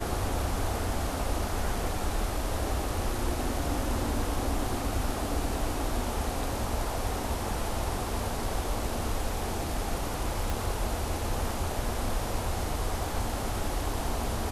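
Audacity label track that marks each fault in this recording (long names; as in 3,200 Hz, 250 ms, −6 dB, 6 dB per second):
10.500000	10.500000	click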